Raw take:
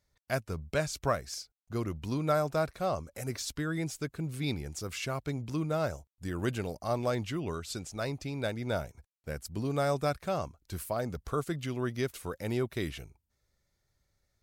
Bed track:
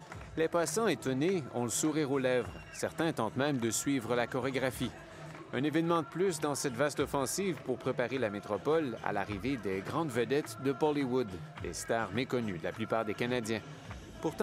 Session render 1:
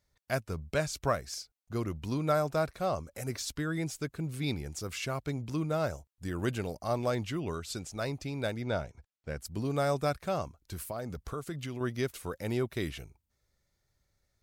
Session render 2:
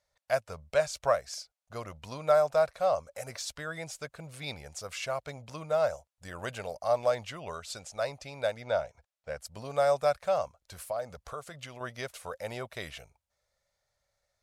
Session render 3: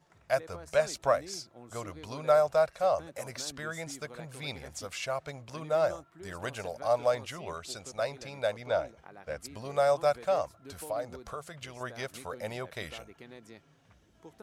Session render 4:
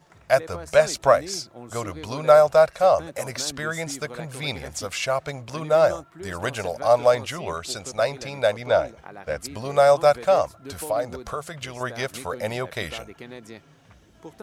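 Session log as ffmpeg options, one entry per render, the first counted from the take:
-filter_complex "[0:a]asettb=1/sr,asplit=3[a][b][c];[a]atrim=end=8.624[d];[b]atrim=start=8.62:end=9.39,asetpts=PTS-STARTPTS,afade=t=in:d=0.004:c=qsin,afade=t=out:st=0.766:d=0.004:c=qsin,lowpass=5.7k[e];[c]atrim=start=9.386[f];[d][e]acrossfade=d=0.004:c1=hsin:c2=qsin[g];[g][f]acrossfade=d=0.004:c1=qsin:c2=hsin,asettb=1/sr,asplit=3[h][i][j];[h]atrim=end=10.424[k];[i]atrim=start=10.42:end=11.81,asetpts=PTS-STARTPTS,afade=t=in:d=0.004:c=qsin,afade=t=out:st=1.386:d=0.004:c=qsin,acompressor=threshold=-34dB:ratio=3:attack=3.2:release=140:knee=1:detection=peak[l];[j]atrim=start=11.806[m];[k][l]acrossfade=d=0.004:c1=hsin:c2=qsin[n];[n][m]acrossfade=d=0.004:c1=qsin:c2=hsin"
-af "lowpass=11k,lowshelf=f=440:t=q:w=3:g=-9"
-filter_complex "[1:a]volume=-17dB[a];[0:a][a]amix=inputs=2:normalize=0"
-af "volume=9.5dB"

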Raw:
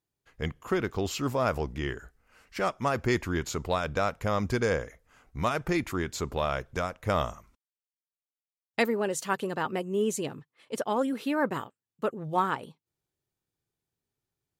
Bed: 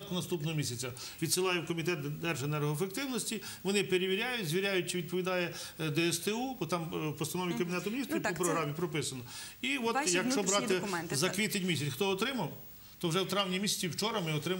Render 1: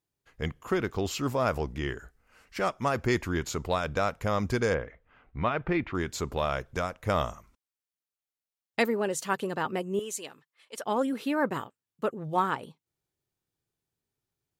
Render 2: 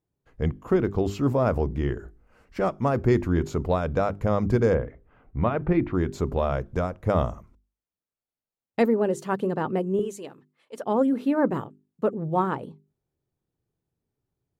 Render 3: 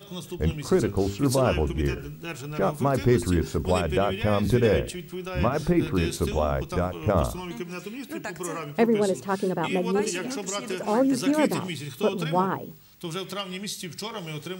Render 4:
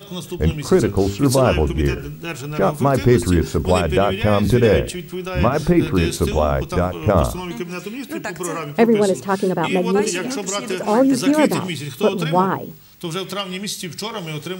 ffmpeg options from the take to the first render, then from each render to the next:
-filter_complex "[0:a]asettb=1/sr,asplit=3[a][b][c];[a]atrim=end=4.744[d];[b]atrim=start=4.74:end=5.95,asetpts=PTS-STARTPTS,afade=t=in:d=0.004:c=qsin,afade=t=out:st=1.206:d=0.004:c=qsin,lowpass=f=3.2k:w=0.5412,lowpass=f=3.2k:w=1.3066[e];[c]atrim=start=5.946[f];[d][e]acrossfade=d=0.004:c1=hsin:c2=qsin[g];[g][f]acrossfade=d=0.004:c1=qsin:c2=hsin,asettb=1/sr,asplit=3[h][i][j];[h]atrim=end=9.994[k];[i]atrim=start=9.99:end=10.83,asetpts=PTS-STARTPTS,afade=t=in:d=0.004:c=qsin,afade=t=out:st=0.836:d=0.004:c=qsin,highpass=f=1.4k:p=1[l];[j]atrim=start=10.826[m];[k][l]acrossfade=d=0.004:c1=hsin:c2=qsin[n];[n][m]acrossfade=d=0.004:c1=qsin:c2=hsin"
-af "tiltshelf=f=1.1k:g=9,bandreject=f=50:t=h:w=6,bandreject=f=100:t=h:w=6,bandreject=f=150:t=h:w=6,bandreject=f=200:t=h:w=6,bandreject=f=250:t=h:w=6,bandreject=f=300:t=h:w=6,bandreject=f=350:t=h:w=6,bandreject=f=400:t=h:w=6"
-filter_complex "[1:a]volume=-1dB[a];[0:a][a]amix=inputs=2:normalize=0"
-af "volume=7dB,alimiter=limit=-2dB:level=0:latency=1"

